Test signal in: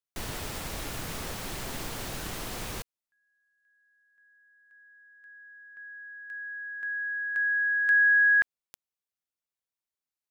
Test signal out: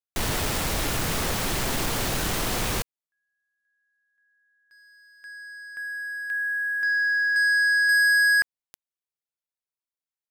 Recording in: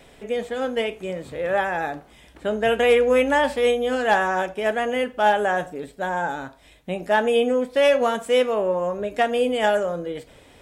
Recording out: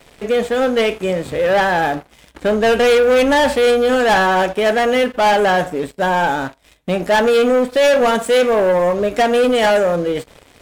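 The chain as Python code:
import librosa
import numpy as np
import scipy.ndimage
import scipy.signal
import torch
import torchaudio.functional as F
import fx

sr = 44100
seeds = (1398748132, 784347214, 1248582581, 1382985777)

y = fx.leveller(x, sr, passes=3)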